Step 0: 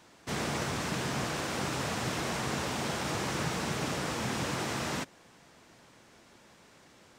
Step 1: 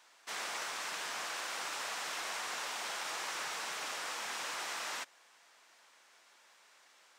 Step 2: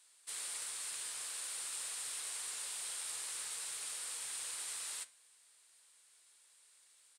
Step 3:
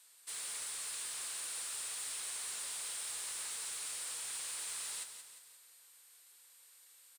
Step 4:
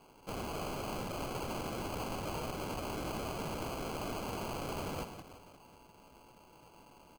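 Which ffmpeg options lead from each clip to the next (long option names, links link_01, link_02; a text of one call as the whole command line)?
ffmpeg -i in.wav -af "highpass=910,volume=-2.5dB" out.wav
ffmpeg -i in.wav -af "firequalizer=gain_entry='entry(100,0);entry(160,-17);entry(240,-21);entry(450,-15);entry(690,-22);entry(1000,-19);entry(4200,-6);entry(5900,-10);entry(9000,9);entry(14000,-8)':delay=0.05:min_phase=1,flanger=delay=9.5:depth=4.4:regen=-79:speed=0.51:shape=triangular,volume=8dB" out.wav
ffmpeg -i in.wav -af "asoftclip=type=tanh:threshold=-39dB,aeval=exprs='val(0)+0.000282*sin(2*PI*12000*n/s)':channel_layout=same,aecho=1:1:176|352|528|704|880|1056:0.355|0.174|0.0852|0.0417|0.0205|0.01,volume=2.5dB" out.wav
ffmpeg -i in.wav -af "acrusher=samples=24:mix=1:aa=0.000001,volume=3dB" out.wav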